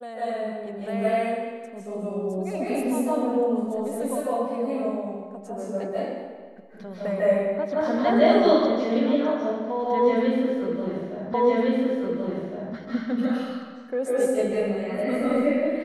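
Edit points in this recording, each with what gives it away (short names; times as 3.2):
11.34 repeat of the last 1.41 s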